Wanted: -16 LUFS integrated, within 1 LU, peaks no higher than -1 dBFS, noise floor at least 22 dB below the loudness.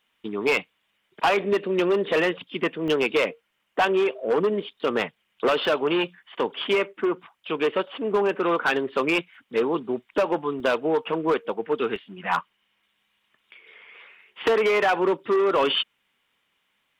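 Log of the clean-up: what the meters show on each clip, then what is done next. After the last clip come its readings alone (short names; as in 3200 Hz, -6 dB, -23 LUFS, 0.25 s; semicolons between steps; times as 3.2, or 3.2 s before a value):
clipped 0.7%; flat tops at -14.5 dBFS; dropouts 4; longest dropout 1.2 ms; loudness -24.5 LUFS; peak -14.5 dBFS; loudness target -16.0 LUFS
-> clip repair -14.5 dBFS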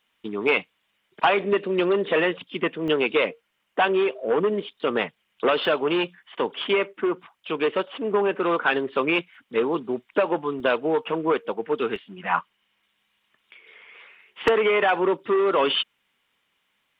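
clipped 0.0%; dropouts 4; longest dropout 1.2 ms
-> interpolate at 2.88/5.65/10.6/11.96, 1.2 ms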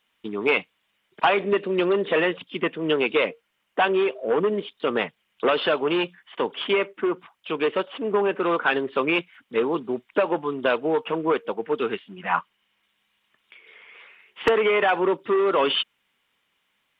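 dropouts 0; loudness -24.0 LUFS; peak -5.5 dBFS; loudness target -16.0 LUFS
-> gain +8 dB; limiter -1 dBFS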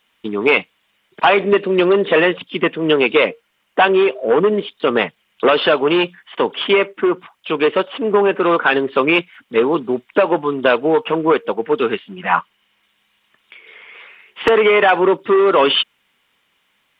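loudness -16.0 LUFS; peak -1.0 dBFS; noise floor -65 dBFS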